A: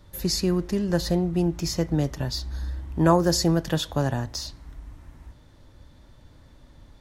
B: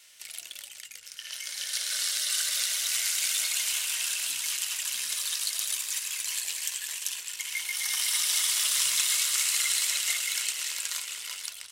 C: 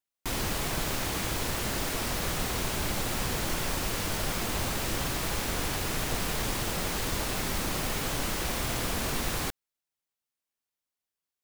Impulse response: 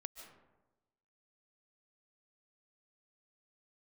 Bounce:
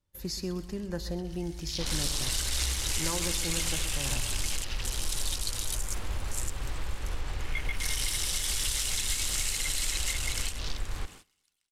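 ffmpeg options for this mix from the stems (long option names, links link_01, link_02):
-filter_complex "[0:a]volume=-9.5dB,asplit=2[link_01][link_02];[link_02]volume=-15.5dB[link_03];[1:a]afwtdn=0.0178,volume=-1.5dB[link_04];[2:a]lowpass=4100,adelay=1550,volume=-6dB,asplit=2[link_05][link_06];[link_06]volume=-15dB[link_07];[link_01][link_05]amix=inputs=2:normalize=0,asubboost=boost=7:cutoff=70,acompressor=threshold=-28dB:ratio=3,volume=0dB[link_08];[link_03][link_07]amix=inputs=2:normalize=0,aecho=0:1:127|254|381|508|635|762|889:1|0.48|0.23|0.111|0.0531|0.0255|0.0122[link_09];[link_04][link_08][link_09]amix=inputs=3:normalize=0,agate=range=-20dB:threshold=-48dB:ratio=16:detection=peak,bandreject=frequency=670:width=12,alimiter=limit=-17dB:level=0:latency=1:release=205"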